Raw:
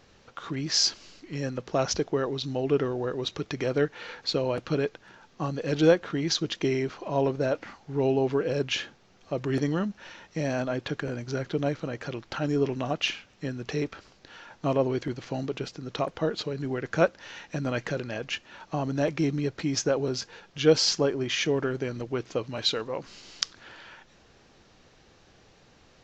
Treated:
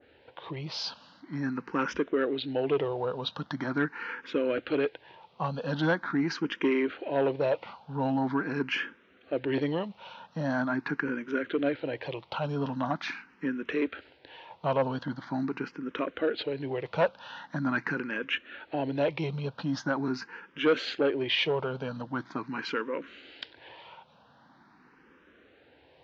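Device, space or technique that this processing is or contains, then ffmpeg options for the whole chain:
barber-pole phaser into a guitar amplifier: -filter_complex "[0:a]asplit=2[a][b];[b]afreqshift=0.43[c];[a][c]amix=inputs=2:normalize=1,asoftclip=type=tanh:threshold=-21dB,highpass=100,equalizer=f=110:t=q:w=4:g=-4,equalizer=f=270:t=q:w=4:g=6,equalizer=f=510:t=q:w=4:g=3,equalizer=f=940:t=q:w=4:g=8,equalizer=f=1.5k:t=q:w=4:g=6,lowpass=f=3.7k:w=0.5412,lowpass=f=3.7k:w=1.3066,adynamicequalizer=threshold=0.00794:dfrequency=1600:dqfactor=0.7:tfrequency=1600:tqfactor=0.7:attack=5:release=100:ratio=0.375:range=2.5:mode=boostabove:tftype=highshelf"

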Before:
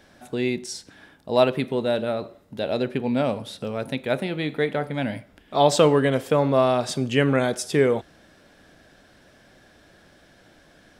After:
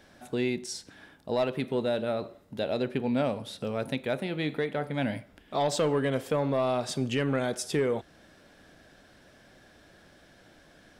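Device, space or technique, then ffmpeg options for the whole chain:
soft clipper into limiter: -af "asoftclip=type=tanh:threshold=-9.5dB,alimiter=limit=-16dB:level=0:latency=1:release=404,volume=-2.5dB"

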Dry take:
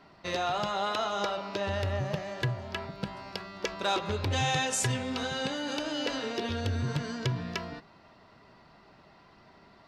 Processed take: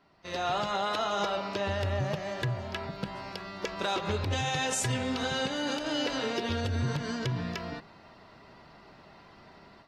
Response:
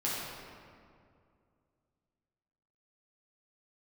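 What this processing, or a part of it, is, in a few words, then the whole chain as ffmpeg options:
low-bitrate web radio: -af "dynaudnorm=f=280:g=3:m=12dB,alimiter=limit=-12dB:level=0:latency=1:release=124,volume=-9dB" -ar 48000 -c:a aac -b:a 48k

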